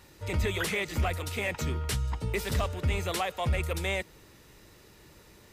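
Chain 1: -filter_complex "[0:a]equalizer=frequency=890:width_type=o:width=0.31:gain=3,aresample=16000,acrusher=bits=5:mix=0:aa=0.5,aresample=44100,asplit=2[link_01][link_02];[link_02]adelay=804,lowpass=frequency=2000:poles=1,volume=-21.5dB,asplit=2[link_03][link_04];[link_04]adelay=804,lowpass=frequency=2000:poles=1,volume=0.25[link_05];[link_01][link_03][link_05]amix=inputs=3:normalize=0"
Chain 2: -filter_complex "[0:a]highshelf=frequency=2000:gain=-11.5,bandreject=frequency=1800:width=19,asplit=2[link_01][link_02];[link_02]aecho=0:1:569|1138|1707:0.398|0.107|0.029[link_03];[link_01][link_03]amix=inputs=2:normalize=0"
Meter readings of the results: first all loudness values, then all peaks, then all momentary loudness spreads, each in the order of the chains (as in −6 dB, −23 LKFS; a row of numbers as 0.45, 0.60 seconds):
−30.5, −32.5 LKFS; −19.5, −18.5 dBFS; 3, 12 LU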